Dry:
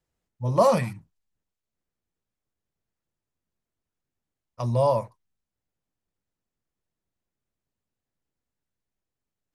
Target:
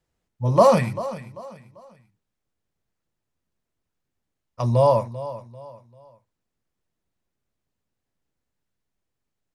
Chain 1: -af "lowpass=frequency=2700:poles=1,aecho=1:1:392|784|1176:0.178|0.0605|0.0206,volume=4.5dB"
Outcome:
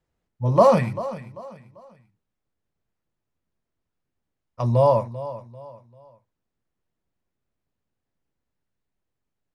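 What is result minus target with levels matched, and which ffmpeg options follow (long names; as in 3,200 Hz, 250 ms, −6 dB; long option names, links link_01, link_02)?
8,000 Hz band −6.0 dB
-af "lowpass=frequency=8100:poles=1,aecho=1:1:392|784|1176:0.178|0.0605|0.0206,volume=4.5dB"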